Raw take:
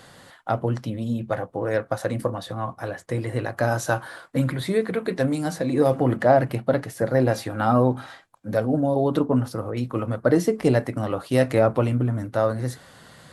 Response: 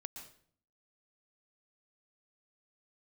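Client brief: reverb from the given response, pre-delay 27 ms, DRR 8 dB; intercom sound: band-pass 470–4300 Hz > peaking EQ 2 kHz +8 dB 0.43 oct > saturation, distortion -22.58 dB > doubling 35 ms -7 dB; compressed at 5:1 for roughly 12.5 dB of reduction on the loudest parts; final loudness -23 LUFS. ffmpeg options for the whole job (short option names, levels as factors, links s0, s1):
-filter_complex "[0:a]acompressor=threshold=0.0447:ratio=5,asplit=2[s0][s1];[1:a]atrim=start_sample=2205,adelay=27[s2];[s1][s2]afir=irnorm=-1:irlink=0,volume=0.631[s3];[s0][s3]amix=inputs=2:normalize=0,highpass=470,lowpass=4300,equalizer=f=2000:t=o:w=0.43:g=8,asoftclip=threshold=0.106,asplit=2[s4][s5];[s5]adelay=35,volume=0.447[s6];[s4][s6]amix=inputs=2:normalize=0,volume=3.98"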